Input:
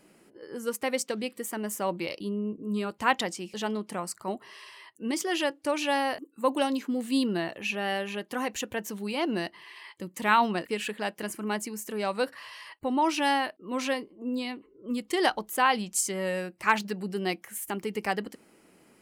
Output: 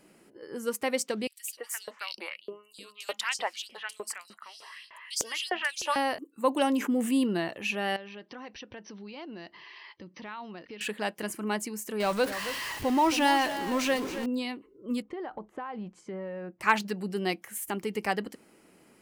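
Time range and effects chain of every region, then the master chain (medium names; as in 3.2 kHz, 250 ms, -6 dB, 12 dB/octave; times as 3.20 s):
1.27–5.96 s: three bands offset in time highs, mids, lows 210/510 ms, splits 210/2900 Hz + LFO high-pass saw up 3.3 Hz 480–6000 Hz
6.62–7.24 s: peaking EQ 4.2 kHz -14 dB 0.47 oct + level flattener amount 50%
7.96–10.81 s: brick-wall FIR low-pass 6.1 kHz + compression 3:1, threshold -44 dBFS
12.00–14.26 s: jump at every zero crossing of -32.5 dBFS + delay 272 ms -11.5 dB
15.02–16.61 s: low-pass 1.3 kHz + compression 16:1, threshold -33 dBFS
whole clip: none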